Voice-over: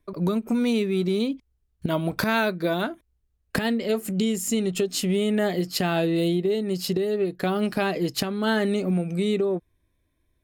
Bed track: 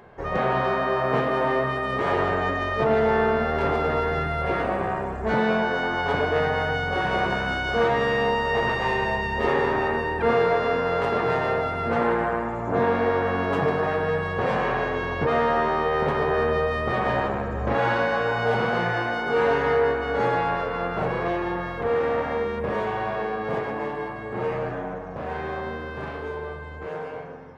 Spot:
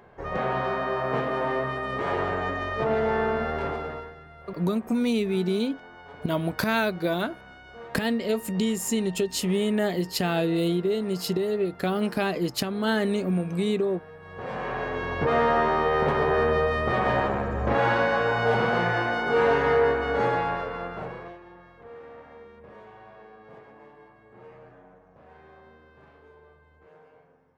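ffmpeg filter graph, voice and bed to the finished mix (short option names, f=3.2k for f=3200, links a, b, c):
-filter_complex "[0:a]adelay=4400,volume=-1.5dB[a];[1:a]volume=17.5dB,afade=t=out:st=3.49:d=0.66:silence=0.133352,afade=t=in:st=14.19:d=1.23:silence=0.0841395,afade=t=out:st=20.06:d=1.33:silence=0.0891251[b];[a][b]amix=inputs=2:normalize=0"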